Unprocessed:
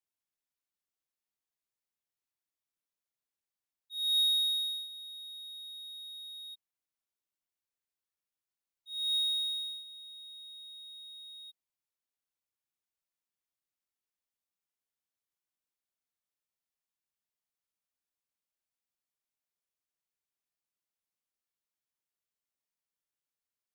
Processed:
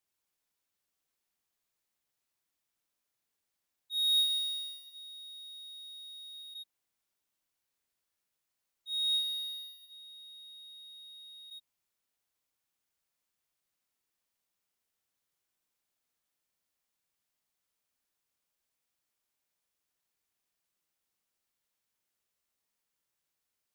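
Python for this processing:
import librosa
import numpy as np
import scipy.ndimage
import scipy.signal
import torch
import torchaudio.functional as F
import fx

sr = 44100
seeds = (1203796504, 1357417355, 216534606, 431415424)

y = fx.peak_eq(x, sr, hz=6000.0, db=10.5, octaves=0.23, at=(4.3, 6.34))
y = y + 10.0 ** (-4.0 / 20.0) * np.pad(y, (int(82 * sr / 1000.0), 0))[:len(y)]
y = y * librosa.db_to_amplitude(6.0)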